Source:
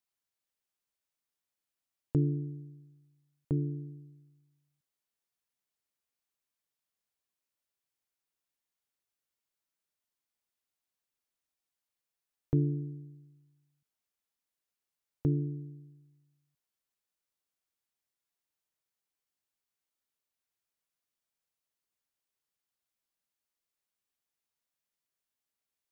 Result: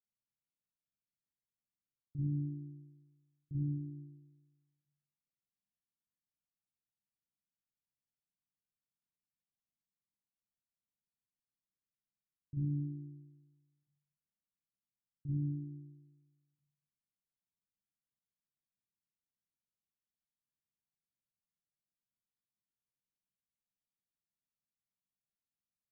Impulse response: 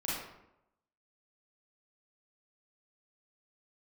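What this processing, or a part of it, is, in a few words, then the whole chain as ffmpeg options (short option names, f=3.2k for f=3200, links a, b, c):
club heard from the street: -filter_complex "[0:a]alimiter=level_in=4dB:limit=-24dB:level=0:latency=1,volume=-4dB,lowpass=f=200:w=0.5412,lowpass=f=200:w=1.3066[a];[1:a]atrim=start_sample=2205[b];[a][b]afir=irnorm=-1:irlink=0,lowshelf=f=110:g=-11.5,volume=1.5dB"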